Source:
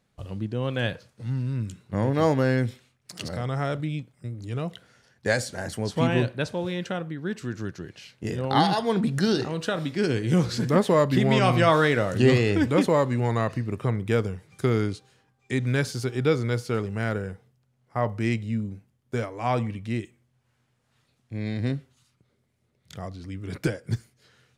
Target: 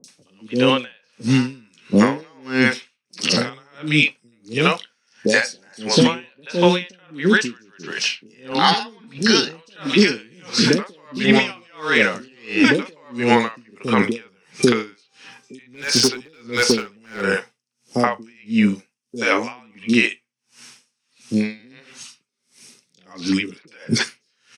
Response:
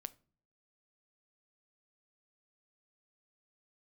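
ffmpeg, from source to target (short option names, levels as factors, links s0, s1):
-filter_complex "[0:a]highpass=f=210:w=0.5412,highpass=f=210:w=1.3066,equalizer=f=330:t=q:w=4:g=-4,equalizer=f=660:t=q:w=4:g=-9,equalizer=f=2600:t=q:w=4:g=7,equalizer=f=5500:t=q:w=4:g=7,lowpass=f=9200:w=0.5412,lowpass=f=9200:w=1.3066,flanger=delay=7.2:depth=1.9:regen=-68:speed=0.13:shape=sinusoidal,acrossover=split=4700[s0][s1];[s0]aemphasis=mode=production:type=75kf[s2];[s1]acompressor=mode=upward:threshold=0.002:ratio=2.5[s3];[s2][s3]amix=inputs=2:normalize=0,bandreject=f=7200:w=7.6,acompressor=threshold=0.02:ratio=6,acrossover=split=510|4000[s4][s5][s6];[s6]adelay=40[s7];[s5]adelay=80[s8];[s4][s8][s7]amix=inputs=3:normalize=0,asplit=3[s9][s10][s11];[s9]afade=t=out:st=15.7:d=0.02[s12];[s10]asoftclip=type=hard:threshold=0.0178,afade=t=in:st=15.7:d=0.02,afade=t=out:st=17.25:d=0.02[s13];[s11]afade=t=in:st=17.25:d=0.02[s14];[s12][s13][s14]amix=inputs=3:normalize=0,alimiter=level_in=29.9:limit=0.891:release=50:level=0:latency=1,aeval=exprs='val(0)*pow(10,-37*(0.5-0.5*cos(2*PI*1.5*n/s))/20)':c=same,volume=0.841"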